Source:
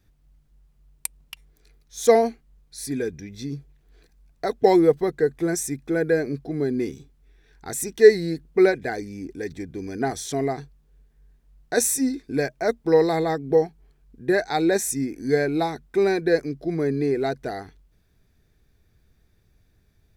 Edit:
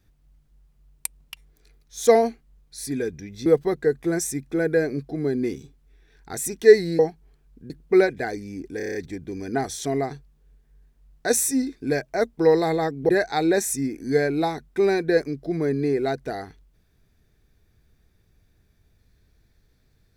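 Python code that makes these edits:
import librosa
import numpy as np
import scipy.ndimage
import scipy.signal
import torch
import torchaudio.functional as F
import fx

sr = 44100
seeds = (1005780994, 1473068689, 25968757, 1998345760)

y = fx.edit(x, sr, fx.cut(start_s=3.46, length_s=1.36),
    fx.stutter(start_s=9.42, slice_s=0.03, count=7),
    fx.move(start_s=13.56, length_s=0.71, to_s=8.35), tone=tone)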